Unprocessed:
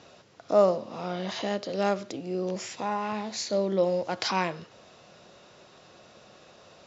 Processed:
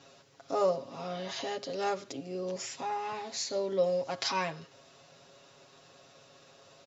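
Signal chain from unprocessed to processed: treble shelf 6.1 kHz +8.5 dB; hum notches 60/120 Hz; comb 7.3 ms, depth 92%; trim -7.5 dB

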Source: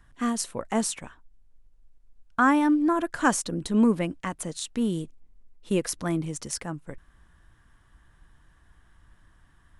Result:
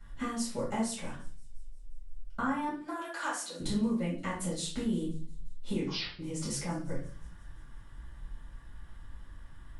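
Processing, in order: 2.68–3.60 s: high-pass 770 Hz 12 dB/octave; compression 5:1, threshold -36 dBFS, peak gain reduction 18 dB; feedback echo behind a high-pass 175 ms, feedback 65%, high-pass 4.2 kHz, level -22 dB; 5.72 s: tape stop 0.47 s; reverberation RT60 0.45 s, pre-delay 5 ms, DRR -10 dB; trim -8.5 dB

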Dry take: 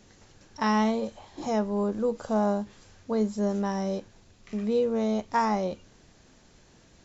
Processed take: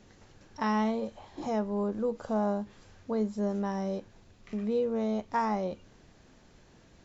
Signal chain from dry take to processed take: treble shelf 5 kHz -9.5 dB; in parallel at -3 dB: compression, threshold -36 dBFS, peak gain reduction 15 dB; on the sum: trim -5 dB

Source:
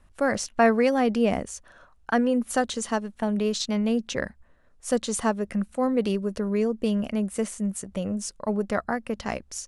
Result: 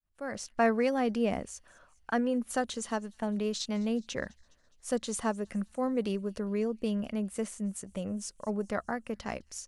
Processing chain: fade-in on the opening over 0.61 s; feedback echo behind a high-pass 207 ms, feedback 59%, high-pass 3.9 kHz, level -21.5 dB; trim -6.5 dB

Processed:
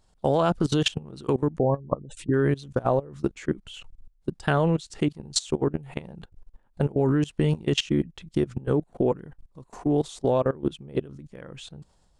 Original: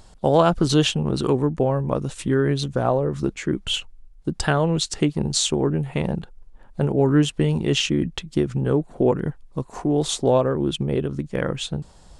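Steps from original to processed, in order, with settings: 1.58–2.34 s: spectral gate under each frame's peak -25 dB strong; level held to a coarse grid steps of 21 dB

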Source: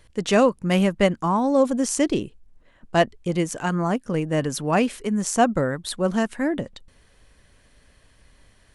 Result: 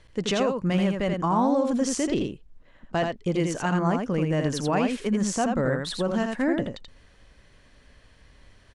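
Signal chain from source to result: low-pass 6.3 kHz 12 dB/octave; peak limiter -16.5 dBFS, peak gain reduction 10.5 dB; on a send: delay 83 ms -4.5 dB

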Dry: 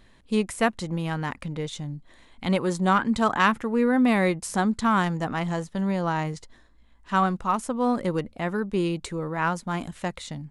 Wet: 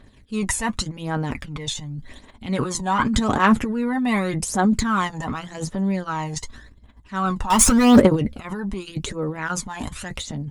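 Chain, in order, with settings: dynamic bell 6.7 kHz, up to +6 dB, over -57 dBFS, Q 5; 7.50–8.00 s: waveshaping leveller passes 5; transient shaper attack -5 dB, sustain +12 dB; comb of notches 170 Hz; phaser 0.87 Hz, delay 1.2 ms, feedback 59%

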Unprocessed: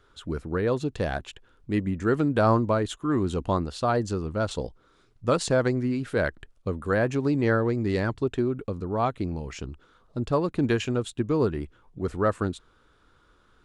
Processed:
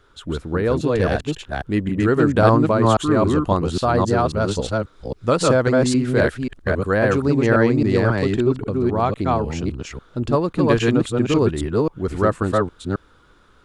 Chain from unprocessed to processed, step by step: chunks repeated in reverse 270 ms, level -0.5 dB; trim +5 dB

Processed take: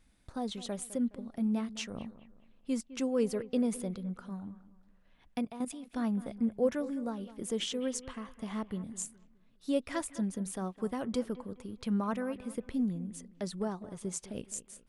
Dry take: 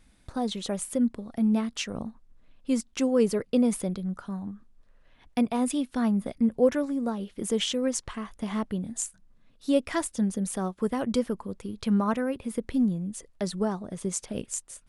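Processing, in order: on a send: bucket-brigade echo 208 ms, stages 4096, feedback 36%, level -16 dB; 5.38–5.93 s: on the sum: level held to a coarse grid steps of 12 dB; trim -7 dB

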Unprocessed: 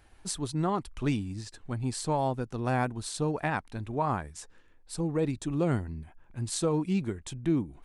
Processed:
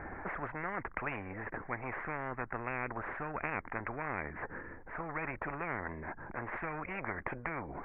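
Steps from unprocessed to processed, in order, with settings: steep low-pass 2.1 kHz 72 dB/octave; spectrum-flattening compressor 10:1; trim -2 dB

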